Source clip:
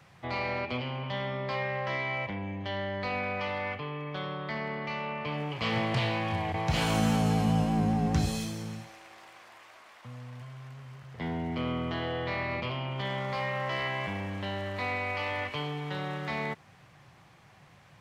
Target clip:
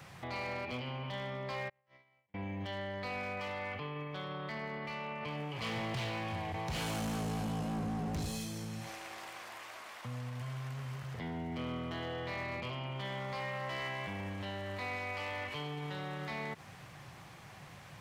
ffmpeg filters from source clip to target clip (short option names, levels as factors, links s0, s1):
-filter_complex "[0:a]highshelf=f=7400:g=6.5,asplit=3[s0][s1][s2];[s0]afade=t=out:st=1.68:d=0.02[s3];[s1]agate=range=0.00251:threshold=0.0501:ratio=16:detection=peak,afade=t=in:st=1.68:d=0.02,afade=t=out:st=2.34:d=0.02[s4];[s2]afade=t=in:st=2.34:d=0.02[s5];[s3][s4][s5]amix=inputs=3:normalize=0,asoftclip=type=hard:threshold=0.0447,alimiter=level_in=5.01:limit=0.0631:level=0:latency=1:release=79,volume=0.2,volume=1.68"